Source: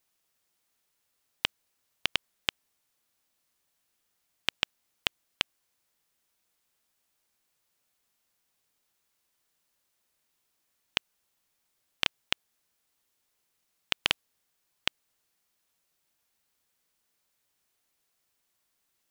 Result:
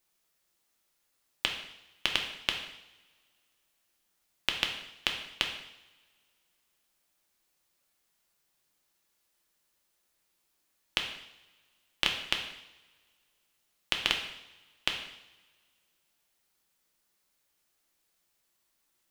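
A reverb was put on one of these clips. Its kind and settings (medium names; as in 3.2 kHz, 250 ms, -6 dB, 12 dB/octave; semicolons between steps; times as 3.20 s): two-slope reverb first 0.79 s, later 2.3 s, from -22 dB, DRR 2 dB; trim -1 dB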